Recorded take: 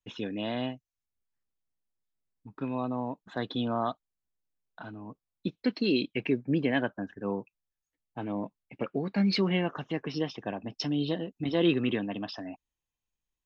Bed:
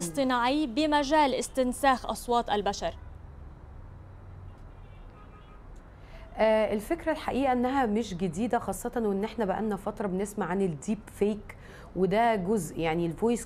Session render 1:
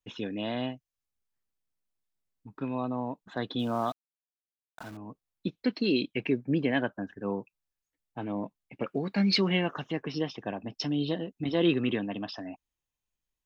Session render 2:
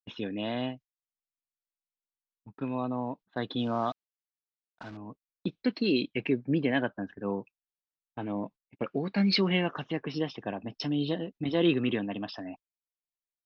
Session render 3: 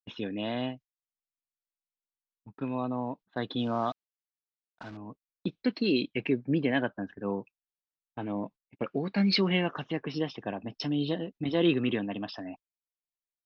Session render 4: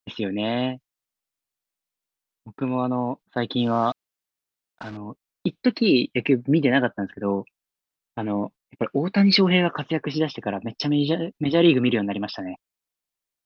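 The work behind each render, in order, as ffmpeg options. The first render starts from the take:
ffmpeg -i in.wav -filter_complex "[0:a]asettb=1/sr,asplit=3[link_01][link_02][link_03];[link_01]atrim=end=3.594[link_04];[link_02]atrim=start=3.59:end=4.97,asetpts=PTS-STARTPTS,afade=type=in:duration=0.004:curve=qsin,afade=type=out:start_time=1.376:duration=0.004:curve=qsin,aeval=exprs='val(0)*gte(abs(val(0)),0.00531)':channel_layout=same[link_05];[link_03]atrim=start=4.966[link_06];[link_04][link_05]acrossfade=duration=0.004:curve1=hsin:curve2=qsin[link_07];[link_07][link_06]acrossfade=duration=0.004:curve1=qsin:curve2=hsin,asettb=1/sr,asplit=3[link_08][link_09][link_10];[link_08]atrim=end=8.864[link_11];[link_09]atrim=start=8.86:end=9.91,asetpts=PTS-STARTPTS,afade=type=in:duration=0.004:curve=qsin,afade=type=out:start_time=1.046:duration=0.004:curve=qsin,highshelf=frequency=2300:gain=6.5[link_12];[link_10]atrim=start=9.906[link_13];[link_11][link_12]acrossfade=duration=0.004:curve1=hsin:curve2=qsin[link_14];[link_14][link_13]acrossfade=duration=0.004:curve1=qsin:curve2=hsin" out.wav
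ffmpeg -i in.wav -af "agate=range=-25dB:threshold=-46dB:ratio=16:detection=peak,lowpass=frequency=5300:width=0.5412,lowpass=frequency=5300:width=1.3066" out.wav
ffmpeg -i in.wav -af anull out.wav
ffmpeg -i in.wav -af "volume=8dB" out.wav

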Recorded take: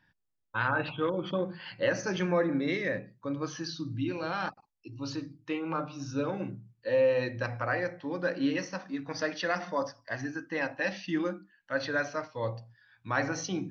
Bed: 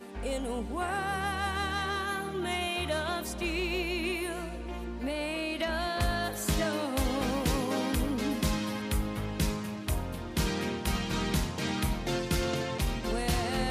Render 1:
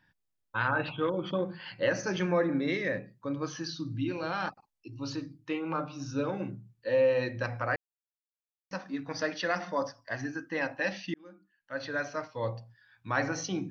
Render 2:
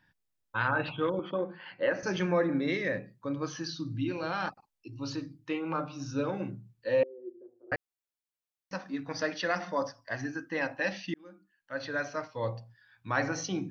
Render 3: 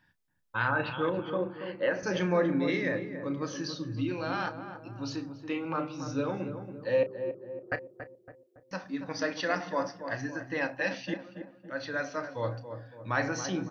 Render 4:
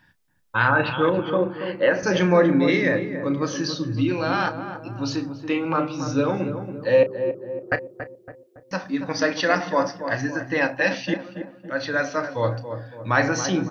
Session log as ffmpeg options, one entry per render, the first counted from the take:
ffmpeg -i in.wav -filter_complex "[0:a]asplit=4[link_01][link_02][link_03][link_04];[link_01]atrim=end=7.76,asetpts=PTS-STARTPTS,afade=type=out:start_time=7.756:duration=0.004:curve=hsin[link_05];[link_02]atrim=start=7.76:end=8.71,asetpts=PTS-STARTPTS,volume=0[link_06];[link_03]atrim=start=8.71:end=11.14,asetpts=PTS-STARTPTS,afade=type=in:duration=0.004:curve=hsin,afade=type=out:start_time=2.426:duration=0.004:curve=hsin[link_07];[link_04]atrim=start=11.14,asetpts=PTS-STARTPTS,afade=type=in:duration=1.16[link_08];[link_05][link_06][link_07][link_08]concat=n=4:v=0:a=1" out.wav
ffmpeg -i in.wav -filter_complex "[0:a]asettb=1/sr,asplit=3[link_01][link_02][link_03];[link_01]atrim=end=1.194[link_04];[link_02]atrim=start=1.19:end=2.03,asetpts=PTS-STARTPTS,afade=type=in:duration=0.004:curve=qsin,afade=type=out:start_time=0.836:duration=0.004:curve=qsin,highpass=250,lowpass=2400[link_05];[link_03]atrim=start=2.026[link_06];[link_04][link_05]acrossfade=duration=0.004:curve1=hsin:curve2=qsin[link_07];[link_07][link_06]acrossfade=duration=0.004:curve1=qsin:curve2=hsin,asettb=1/sr,asplit=3[link_08][link_09][link_10];[link_08]atrim=end=7.034[link_11];[link_09]atrim=start=7.03:end=7.72,asetpts=PTS-STARTPTS,afade=type=in:duration=0.004:curve=qsin,afade=type=out:start_time=0.686:duration=0.004:curve=qsin,asuperpass=centerf=370:order=4:qfactor=5.9[link_12];[link_10]atrim=start=7.716[link_13];[link_11][link_12]acrossfade=duration=0.004:curve1=hsin:curve2=qsin[link_14];[link_14][link_13]acrossfade=duration=0.004:curve1=qsin:curve2=hsin" out.wav
ffmpeg -i in.wav -filter_complex "[0:a]asplit=2[link_01][link_02];[link_02]adelay=33,volume=-13dB[link_03];[link_01][link_03]amix=inputs=2:normalize=0,asplit=2[link_04][link_05];[link_05]adelay=280,lowpass=frequency=1100:poles=1,volume=-8dB,asplit=2[link_06][link_07];[link_07]adelay=280,lowpass=frequency=1100:poles=1,volume=0.52,asplit=2[link_08][link_09];[link_09]adelay=280,lowpass=frequency=1100:poles=1,volume=0.52,asplit=2[link_10][link_11];[link_11]adelay=280,lowpass=frequency=1100:poles=1,volume=0.52,asplit=2[link_12][link_13];[link_13]adelay=280,lowpass=frequency=1100:poles=1,volume=0.52,asplit=2[link_14][link_15];[link_15]adelay=280,lowpass=frequency=1100:poles=1,volume=0.52[link_16];[link_04][link_06][link_08][link_10][link_12][link_14][link_16]amix=inputs=7:normalize=0" out.wav
ffmpeg -i in.wav -af "volume=9.5dB" out.wav

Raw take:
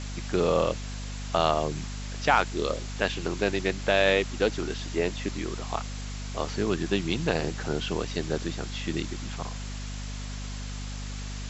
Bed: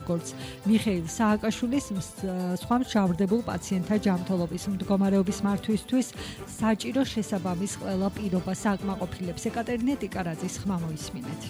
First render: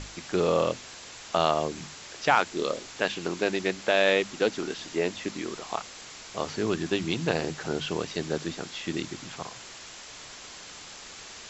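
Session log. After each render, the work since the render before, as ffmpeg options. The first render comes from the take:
ffmpeg -i in.wav -af "bandreject=frequency=50:width_type=h:width=6,bandreject=frequency=100:width_type=h:width=6,bandreject=frequency=150:width_type=h:width=6,bandreject=frequency=200:width_type=h:width=6,bandreject=frequency=250:width_type=h:width=6" out.wav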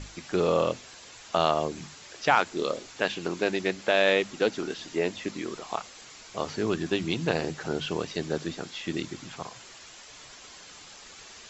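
ffmpeg -i in.wav -af "afftdn=noise_reduction=6:noise_floor=-45" out.wav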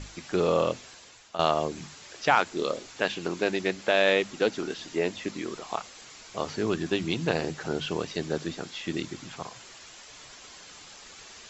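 ffmpeg -i in.wav -filter_complex "[0:a]asplit=2[link_01][link_02];[link_01]atrim=end=1.39,asetpts=PTS-STARTPTS,afade=type=out:start_time=0.85:duration=0.54:silence=0.223872[link_03];[link_02]atrim=start=1.39,asetpts=PTS-STARTPTS,afade=type=in:duration=0.004:curve=hsin:silence=0.223872[link_04];[link_03][link_04]concat=n=2:v=0:a=1" out.wav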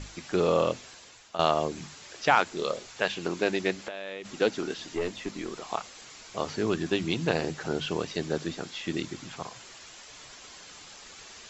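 ffmpeg -i in.wav -filter_complex "[0:a]asettb=1/sr,asplit=3[link_01][link_02][link_03];[link_01]atrim=end=2.554[link_04];[link_02]atrim=start=2.55:end=3.18,asetpts=PTS-STARTPTS,afade=type=in:duration=0.004:curve=qsin,afade=type=out:start_time=0.626:duration=0.004:curve=qsin,equalizer=frequency=290:width_type=o:width=0.5:gain=-9[link_05];[link_03]atrim=start=3.176[link_06];[link_04][link_05]acrossfade=duration=0.004:curve1=hsin:curve2=qsin[link_07];[link_07][link_06]acrossfade=duration=0.004:curve1=qsin:curve2=hsin,asplit=3[link_08][link_09][link_10];[link_08]afade=type=out:start_time=3.78:duration=0.02[link_11];[link_09]acompressor=threshold=-33dB:ratio=10:attack=3.2:release=140:knee=1:detection=peak,afade=type=in:start_time=3.78:duration=0.02,afade=type=out:start_time=4.24:duration=0.02[link_12];[link_10]afade=type=in:start_time=4.24:duration=0.02[link_13];[link_11][link_12][link_13]amix=inputs=3:normalize=0,asettb=1/sr,asplit=3[link_14][link_15][link_16];[link_14]atrim=end=4.944[link_17];[link_15]atrim=start=4.94:end=5.57,asetpts=PTS-STARTPTS,afade=type=in:duration=0.004:curve=qsin,afade=type=out:start_time=0.626:duration=0.004:curve=qsin,aeval=exprs='(tanh(12.6*val(0)+0.4)-tanh(0.4))/12.6':channel_layout=same[link_18];[link_16]atrim=start=5.566[link_19];[link_17][link_18]acrossfade=duration=0.004:curve1=hsin:curve2=qsin[link_20];[link_20][link_19]acrossfade=duration=0.004:curve1=qsin:curve2=hsin" out.wav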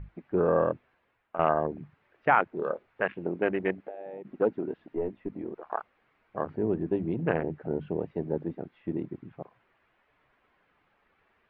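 ffmpeg -i in.wav -af "afwtdn=0.0251,lowpass=frequency=2200:width=0.5412,lowpass=frequency=2200:width=1.3066" out.wav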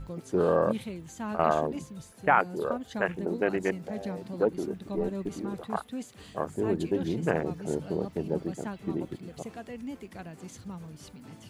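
ffmpeg -i in.wav -i bed.wav -filter_complex "[1:a]volume=-12dB[link_01];[0:a][link_01]amix=inputs=2:normalize=0" out.wav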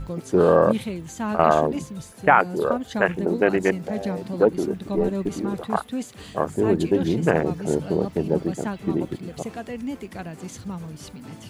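ffmpeg -i in.wav -af "volume=8dB,alimiter=limit=-3dB:level=0:latency=1" out.wav

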